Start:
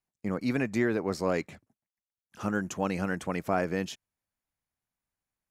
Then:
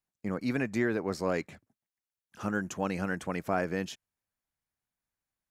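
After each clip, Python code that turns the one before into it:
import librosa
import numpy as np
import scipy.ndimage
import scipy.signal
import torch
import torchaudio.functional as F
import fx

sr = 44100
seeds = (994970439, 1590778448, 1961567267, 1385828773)

y = fx.peak_eq(x, sr, hz=1600.0, db=2.5, octaves=0.33)
y = y * librosa.db_to_amplitude(-2.0)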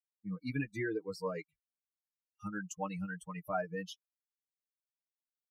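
y = fx.bin_expand(x, sr, power=3.0)
y = y + 0.87 * np.pad(y, (int(6.5 * sr / 1000.0), 0))[:len(y)]
y = y * librosa.db_to_amplitude(-3.0)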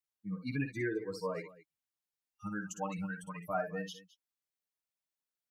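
y = fx.echo_multitap(x, sr, ms=(58, 213), db=(-8.0, -18.5))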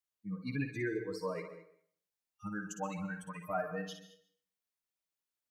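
y = fx.rev_plate(x, sr, seeds[0], rt60_s=0.56, hf_ratio=0.8, predelay_ms=115, drr_db=11.5)
y = y * librosa.db_to_amplitude(-1.0)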